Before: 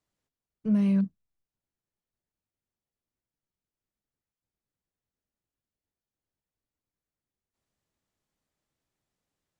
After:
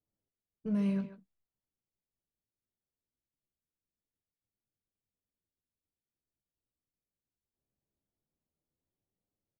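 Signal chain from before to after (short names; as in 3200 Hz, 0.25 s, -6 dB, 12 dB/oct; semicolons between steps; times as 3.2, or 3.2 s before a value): low-pass opened by the level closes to 580 Hz, open at -32 dBFS; flange 0.21 Hz, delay 8.8 ms, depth 9 ms, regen -32%; speakerphone echo 0.14 s, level -10 dB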